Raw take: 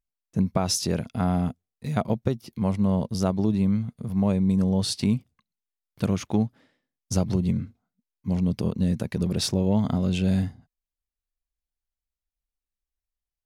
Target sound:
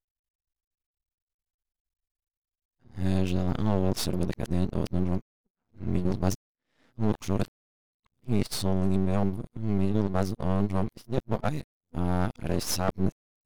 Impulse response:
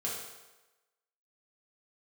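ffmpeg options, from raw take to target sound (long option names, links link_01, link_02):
-af "areverse,aeval=exprs='max(val(0),0)':channel_layout=same"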